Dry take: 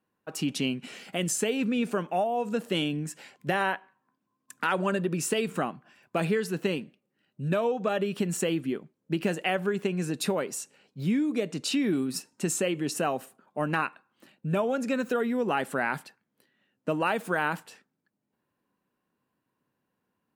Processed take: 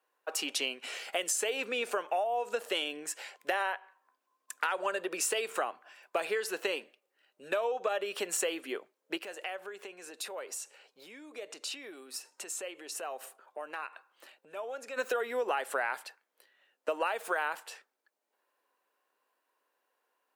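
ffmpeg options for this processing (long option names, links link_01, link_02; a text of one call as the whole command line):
ffmpeg -i in.wav -filter_complex "[0:a]asplit=3[link_01][link_02][link_03];[link_01]afade=type=out:start_time=9.17:duration=0.02[link_04];[link_02]acompressor=threshold=-42dB:ratio=3:attack=3.2:release=140:knee=1:detection=peak,afade=type=in:start_time=9.17:duration=0.02,afade=type=out:start_time=14.96:duration=0.02[link_05];[link_03]afade=type=in:start_time=14.96:duration=0.02[link_06];[link_04][link_05][link_06]amix=inputs=3:normalize=0,highpass=frequency=470:width=0.5412,highpass=frequency=470:width=1.3066,acompressor=threshold=-32dB:ratio=6,volume=4dB" out.wav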